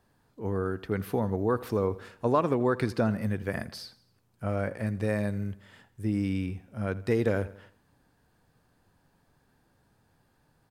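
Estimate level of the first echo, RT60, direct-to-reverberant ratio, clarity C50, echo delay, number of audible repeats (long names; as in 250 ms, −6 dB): −19.0 dB, no reverb audible, no reverb audible, no reverb audible, 82 ms, 3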